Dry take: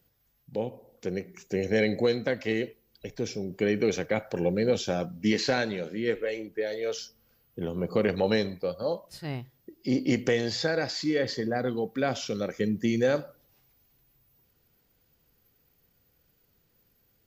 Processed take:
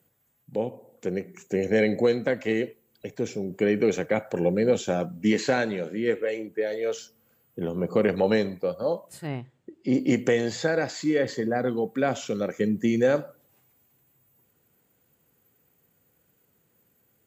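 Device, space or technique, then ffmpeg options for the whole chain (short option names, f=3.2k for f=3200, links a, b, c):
budget condenser microphone: -filter_complex "[0:a]asettb=1/sr,asplit=3[a][b][c];[a]atrim=end=9.274[d];[b]atrim=start=9.27:end=9.94,asetpts=PTS-STARTPTS,afade=t=in:d=0.004:c=qsin,afade=t=out:st=0.666:d=0.004:c=qsin,lowpass=5k[e];[c]atrim=start=9.936[f];[d][e]acrossfade=d=0.004:c1=hsin:c2=qsin[g];[g][f]acrossfade=d=0.004:c1=qsin:c2=hsin,highpass=120,aemphasis=mode=reproduction:type=cd,highshelf=f=6.4k:t=q:w=3:g=7,volume=3dB"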